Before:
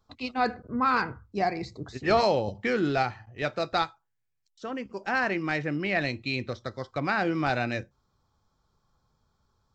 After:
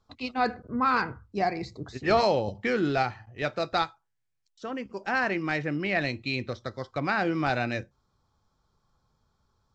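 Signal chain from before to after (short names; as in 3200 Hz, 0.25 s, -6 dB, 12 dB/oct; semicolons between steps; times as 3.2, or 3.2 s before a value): LPF 9600 Hz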